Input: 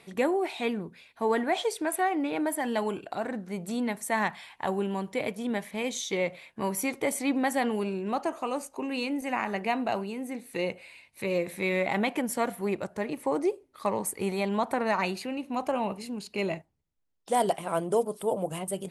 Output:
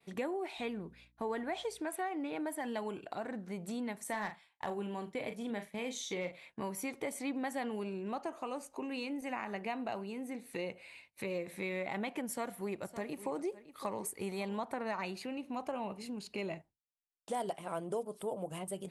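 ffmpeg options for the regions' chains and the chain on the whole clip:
-filter_complex "[0:a]asettb=1/sr,asplit=3[a][b][c];[a]atrim=end=0.584[d];[b]atrim=start=0.58:end=1.81,asetpts=PTS-STARTPTS,afade=t=in:d=0.004:c=qsin,afade=t=out:st=1.226:d=0.004:c=qsin,agate=range=-33dB:threshold=-51dB:ratio=3:release=100:detection=peak,aeval=exprs='val(0)+0.00112*(sin(2*PI*60*n/s)+sin(2*PI*2*60*n/s)/2+sin(2*PI*3*60*n/s)/3+sin(2*PI*4*60*n/s)/4+sin(2*PI*5*60*n/s)/5)':c=same[e];[c]atrim=start=1.806[f];[d][e]acrossfade=d=0.004:c1=hsin:c2=qsin[g];[g][f]acrossfade=d=0.004:c1=qsin:c2=hsin,asettb=1/sr,asplit=3[h][i][j];[h]atrim=end=4.044[k];[i]atrim=start=4.04:end=6.32,asetpts=PTS-STARTPTS,afade=t=in:d=0.004:c=qsin,afade=t=out:st=2.276:d=0.004:c=qsin,agate=range=-11dB:threshold=-44dB:ratio=16:release=100:detection=peak,asoftclip=type=hard:threshold=-18.5dB,asplit=2[l][m];[m]adelay=39,volume=-8.5dB[n];[l][n]amix=inputs=2:normalize=0,atrim=end_sample=100548[o];[j]atrim=start=6.316[p];[k][o]acrossfade=d=0.004:c1=hsin:c2=qsin[q];[q][p]acrossfade=d=0.004:c1=qsin:c2=hsin,asettb=1/sr,asplit=3[r][s][t];[r]atrim=end=12.274[u];[s]atrim=start=12.27:end=14.6,asetpts=PTS-STARTPTS,afade=t=in:d=0.004:c=qsin,afade=t=out:st=2.326:d=0.004:c=qsin,highshelf=f=5.3k:g=5.5,aecho=1:1:561:0.141,atrim=end_sample=102753[v];[t]atrim=start=14.596[w];[u][v]acrossfade=d=0.004:c1=hsin:c2=qsin[x];[x][w]acrossfade=d=0.004:c1=qsin:c2=hsin,acompressor=threshold=-39dB:ratio=2,agate=range=-33dB:threshold=-50dB:ratio=3:detection=peak,highshelf=f=10k:g=-5,volume=-2dB"

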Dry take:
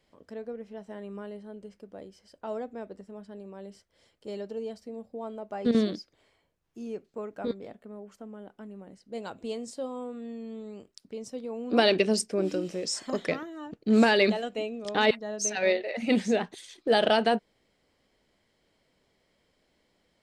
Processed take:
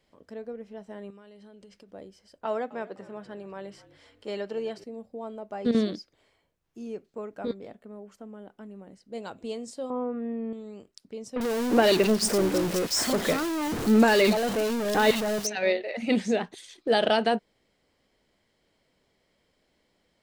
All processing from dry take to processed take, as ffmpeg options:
-filter_complex "[0:a]asettb=1/sr,asplit=3[a][b][c];[a]atrim=end=1.104[d];[b]atrim=start=1.1:end=1.91,asetpts=PTS-STARTPTS,afade=t=in:d=0.004:c=qsin,afade=t=out:st=0.806:d=0.004:c=qsin,equalizer=f=4.1k:w=0.48:g=9.5,acompressor=threshold=-47dB:ratio=8:attack=3.2:release=140:knee=1:detection=peak[e];[c]atrim=start=1.906[f];[d][e]acrossfade=d=0.004:c1=hsin:c2=qsin[g];[g][f]acrossfade=d=0.004:c1=qsin:c2=hsin,asettb=1/sr,asplit=3[h][i][j];[h]atrim=end=2.454[k];[i]atrim=start=2.45:end=4.84,asetpts=PTS-STARTPTS,afade=t=in:d=0.004:c=qsin,afade=t=out:st=2.386:d=0.004:c=qsin,highpass=f=140:w=0.5412,highpass=f=140:w=1.3066,equalizer=f=1.7k:t=o:w=2.8:g=11,asplit=5[l][m][n][o][p];[m]adelay=254,afreqshift=-51,volume=-19dB[q];[n]adelay=508,afreqshift=-102,volume=-25.2dB[r];[o]adelay=762,afreqshift=-153,volume=-31.4dB[s];[p]adelay=1016,afreqshift=-204,volume=-37.6dB[t];[l][q][r][s][t]amix=inputs=5:normalize=0,atrim=end_sample=105399[u];[j]atrim=start=4.836[v];[k][u]acrossfade=d=0.004:c1=hsin:c2=qsin[w];[w][v]acrossfade=d=0.004:c1=qsin:c2=hsin,asettb=1/sr,asplit=3[x][y][z];[x]atrim=end=9.904[aa];[y]atrim=start=9.9:end=10.53,asetpts=PTS-STARTPTS,afade=t=in:d=0.004:c=qsin,afade=t=out:st=0.626:d=0.004:c=qsin,lowpass=f=2.1k:w=0.5412,lowpass=f=2.1k:w=1.3066,acontrast=72[ab];[z]atrim=start=10.526[ac];[aa][ab]acrossfade=d=0.004:c1=hsin:c2=qsin[ad];[ad][ac]acrossfade=d=0.004:c1=qsin:c2=hsin,asettb=1/sr,asplit=3[ae][af][ag];[ae]atrim=end=11.364[ah];[af]atrim=start=11.36:end=15.47,asetpts=PTS-STARTPTS,afade=t=in:d=0.004:c=qsin,afade=t=out:st=4.106:d=0.004:c=qsin,aeval=exprs='val(0)+0.5*0.0596*sgn(val(0))':c=same,acrossover=split=2700[ai][aj];[aj]adelay=50[ak];[ai][ak]amix=inputs=2:normalize=0,atrim=end_sample=181251[al];[ag]atrim=start=15.466[am];[ah][al]acrossfade=d=0.004:c1=hsin:c2=qsin[an];[an][am]acrossfade=d=0.004:c1=qsin:c2=hsin"

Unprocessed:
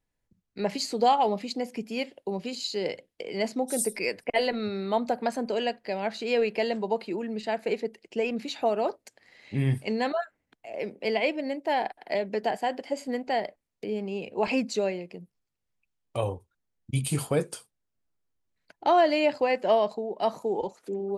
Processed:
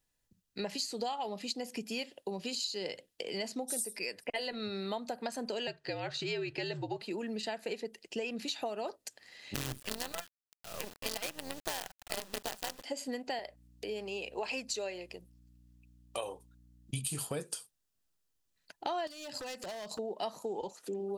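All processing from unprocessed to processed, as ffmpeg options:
-filter_complex "[0:a]asettb=1/sr,asplit=3[a][b][c];[a]atrim=end=5.674[d];[b]atrim=start=5.67:end=7.02,asetpts=PTS-STARTPTS,afade=t=in:d=0.004:c=qsin,afade=t=out:st=1.346:d=0.004:c=qsin,lowpass=6.4k,bandreject=f=670:w=16,afreqshift=-72[e];[c]atrim=start=7.016[f];[d][e]acrossfade=d=0.004:c1=hsin:c2=qsin[g];[g][f]acrossfade=d=0.004:c1=qsin:c2=hsin,asettb=1/sr,asplit=3[h][i][j];[h]atrim=end=9.544[k];[i]atrim=start=9.54:end=12.84,asetpts=PTS-STARTPTS,afade=t=in:d=0.004:c=qsin,afade=t=out:st=3.296:d=0.004:c=qsin,tremolo=f=180:d=0.621,acrusher=bits=5:dc=4:mix=0:aa=0.000001[l];[j]atrim=start=12.836[m];[k][l]acrossfade=d=0.004:c1=hsin:c2=qsin[n];[n][m]acrossfade=d=0.004:c1=qsin:c2=hsin,asettb=1/sr,asplit=3[o][p][q];[o]atrim=end=13.394[r];[p]atrim=start=13.39:end=16.91,asetpts=PTS-STARTPTS,afade=t=in:d=0.004:c=qsin,afade=t=out:st=3.516:d=0.004:c=qsin,highpass=370,aeval=exprs='val(0)+0.00141*(sin(2*PI*60*n/s)+sin(2*PI*2*60*n/s)/2+sin(2*PI*3*60*n/s)/3+sin(2*PI*4*60*n/s)/4+sin(2*PI*5*60*n/s)/5)':c=same[s];[q]atrim=start=16.906[t];[r][s]acrossfade=d=0.004:c1=hsin:c2=qsin[u];[u][t]acrossfade=d=0.004:c1=qsin:c2=hsin,asettb=1/sr,asplit=3[v][w][x];[v]atrim=end=19.074[y];[w]atrim=start=19.07:end=19.99,asetpts=PTS-STARTPTS,afade=t=in:d=0.004:c=qsin,afade=t=out:st=0.916:d=0.004:c=qsin,bass=f=250:g=8,treble=f=4k:g=12,acompressor=threshold=-35dB:ratio=12:attack=3.2:release=140:knee=1:detection=peak,aeval=exprs='0.0188*(abs(mod(val(0)/0.0188+3,4)-2)-1)':c=same[z];[x]atrim=start=19.986[aa];[y][z]acrossfade=d=0.004:c1=hsin:c2=qsin[ab];[ab][aa]acrossfade=d=0.004:c1=qsin:c2=hsin,highshelf=f=2.2k:g=11.5,bandreject=f=2.2k:w=9.4,acompressor=threshold=-31dB:ratio=6,volume=-3dB"

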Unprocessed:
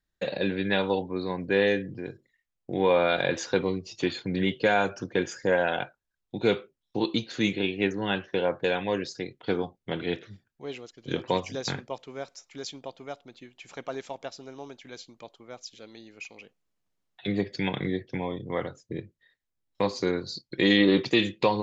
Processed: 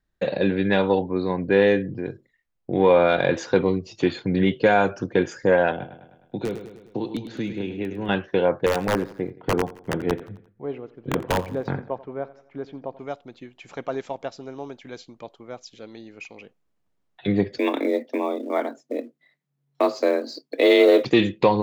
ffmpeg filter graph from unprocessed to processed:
-filter_complex "[0:a]asettb=1/sr,asplit=3[a][b][c];[a]atrim=end=5.714[d];[b]atrim=start=5.71:end=8.09,asetpts=PTS-STARTPTS,afade=t=in:d=0.004:c=qsin,afade=t=out:st=2.376:d=0.004:c=qsin,aeval=exprs='(mod(4.22*val(0)+1,2)-1)/4.22':c=same,acrossover=split=84|450[e][f][g];[e]acompressor=threshold=-56dB:ratio=4[h];[f]acompressor=threshold=-35dB:ratio=4[i];[g]acompressor=threshold=-42dB:ratio=4[j];[h][i][j]amix=inputs=3:normalize=0,aecho=1:1:103|206|309|412|515|618:0.299|0.164|0.0903|0.0497|0.0273|0.015,atrim=end_sample=104958[k];[c]atrim=start=8.086[l];[d][k]acrossfade=d=0.004:c1=hsin:c2=qsin[m];[m][l]acrossfade=d=0.004:c1=qsin:c2=hsin,asettb=1/sr,asplit=3[n][o][p];[n]atrim=end=8.664[q];[o]atrim=start=8.66:end=12.99,asetpts=PTS-STARTPTS,afade=t=in:d=0.004:c=qsin,afade=t=out:st=4.326:d=0.004:c=qsin,lowpass=1.5k,aeval=exprs='(mod(8.41*val(0)+1,2)-1)/8.41':c=same,aecho=1:1:87|174|261|348:0.126|0.0592|0.0278|0.0131,atrim=end_sample=190953[r];[p]atrim=start=12.986[s];[q][r]acrossfade=d=0.004:c1=hsin:c2=qsin[t];[t][s]acrossfade=d=0.004:c1=qsin:c2=hsin,asettb=1/sr,asplit=3[u][v][w];[u]atrim=end=17.584[x];[v]atrim=start=17.58:end=21.05,asetpts=PTS-STARTPTS,afade=t=in:d=0.004:c=qsin,afade=t=out:st=3.466:d=0.004:c=qsin,acrusher=bits=6:mode=log:mix=0:aa=0.000001,afreqshift=140[y];[w]atrim=start=21.046[z];[x][y]acrossfade=d=0.004:c1=hsin:c2=qsin[aa];[aa][z]acrossfade=d=0.004:c1=qsin:c2=hsin,highshelf=f=2.4k:g=-10.5,acontrast=79"

